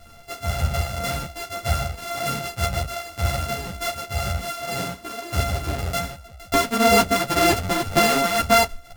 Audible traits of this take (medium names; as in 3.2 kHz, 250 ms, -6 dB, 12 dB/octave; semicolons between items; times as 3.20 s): a buzz of ramps at a fixed pitch in blocks of 64 samples; tremolo triangle 1.9 Hz, depth 55%; a shimmering, thickened sound